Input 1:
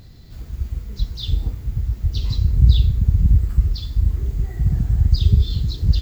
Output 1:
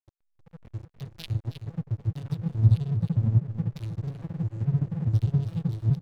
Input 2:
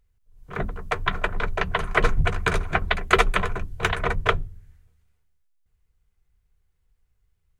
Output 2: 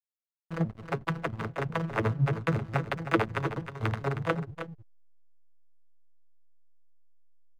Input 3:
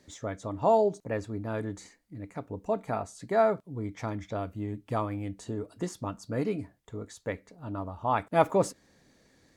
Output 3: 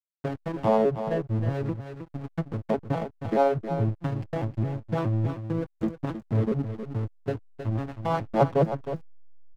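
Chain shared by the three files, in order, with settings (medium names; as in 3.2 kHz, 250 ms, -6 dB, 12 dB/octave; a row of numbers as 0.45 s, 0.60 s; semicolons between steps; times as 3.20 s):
vocoder on a broken chord major triad, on A2, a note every 210 ms; in parallel at -2 dB: compression 10:1, threshold -34 dBFS; on the sum: hysteresis with a dead band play -29.5 dBFS; on a send: delay 314 ms -10.5 dB; on the sum: tape noise reduction on one side only encoder only; peak normalisation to -9 dBFS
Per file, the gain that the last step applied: -0.5 dB, -4.5 dB, +2.5 dB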